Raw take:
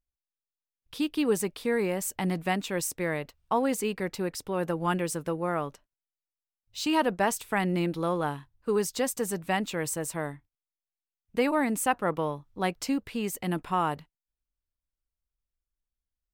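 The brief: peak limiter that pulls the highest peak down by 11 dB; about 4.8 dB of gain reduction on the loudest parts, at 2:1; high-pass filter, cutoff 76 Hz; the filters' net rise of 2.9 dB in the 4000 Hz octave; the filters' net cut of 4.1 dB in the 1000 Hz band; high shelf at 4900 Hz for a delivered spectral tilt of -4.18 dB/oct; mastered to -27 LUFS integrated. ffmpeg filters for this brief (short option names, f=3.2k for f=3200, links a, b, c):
-af "highpass=76,equalizer=f=1k:t=o:g=-5.5,equalizer=f=4k:t=o:g=6.5,highshelf=f=4.9k:g=-4.5,acompressor=threshold=-30dB:ratio=2,volume=11.5dB,alimiter=limit=-17.5dB:level=0:latency=1"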